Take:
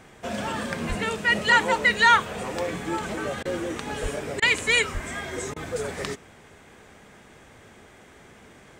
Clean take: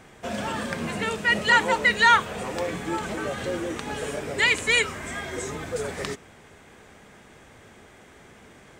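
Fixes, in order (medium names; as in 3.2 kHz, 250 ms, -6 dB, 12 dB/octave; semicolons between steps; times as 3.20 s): 0.88–1.00 s: high-pass 140 Hz 24 dB/octave; 4.02–4.14 s: high-pass 140 Hz 24 dB/octave; 4.93–5.05 s: high-pass 140 Hz 24 dB/octave; interpolate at 3.43/4.40/5.54 s, 21 ms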